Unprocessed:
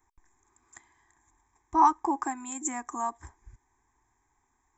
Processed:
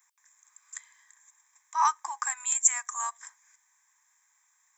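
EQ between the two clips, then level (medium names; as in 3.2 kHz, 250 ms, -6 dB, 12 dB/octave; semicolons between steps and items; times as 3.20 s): high-pass 1.2 kHz 24 dB/octave; treble shelf 2.7 kHz +10 dB; +3.0 dB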